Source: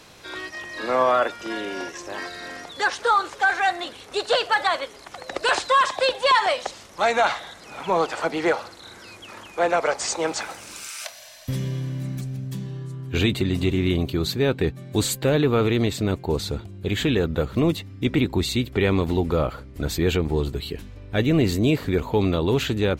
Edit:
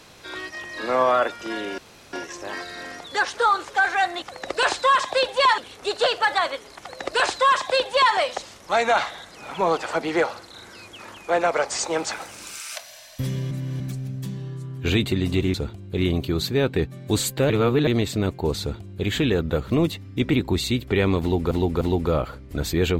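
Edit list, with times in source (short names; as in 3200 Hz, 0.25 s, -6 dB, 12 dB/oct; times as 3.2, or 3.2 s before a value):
1.78 insert room tone 0.35 s
5.08–6.44 copy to 3.87
11.8–12.09 reverse
15.35–15.72 reverse
16.45–16.89 copy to 13.83
19.06–19.36 loop, 3 plays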